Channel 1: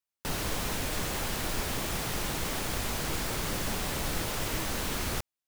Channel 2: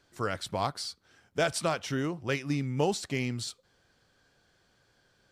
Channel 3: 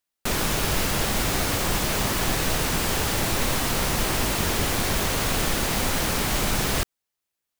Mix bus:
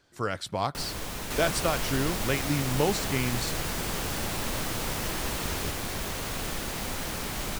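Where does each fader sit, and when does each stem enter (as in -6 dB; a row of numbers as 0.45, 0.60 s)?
-3.5, +1.5, -9.0 dB; 0.50, 0.00, 1.05 s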